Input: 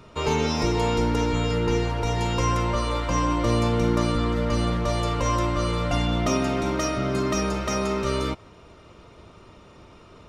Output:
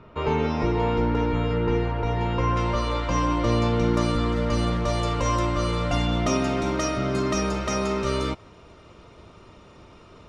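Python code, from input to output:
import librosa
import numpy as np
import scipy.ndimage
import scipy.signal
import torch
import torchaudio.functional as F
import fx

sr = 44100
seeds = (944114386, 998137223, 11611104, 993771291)

y = fx.lowpass(x, sr, hz=fx.steps((0.0, 2300.0), (2.57, 5600.0), (3.94, 9500.0)), slope=12)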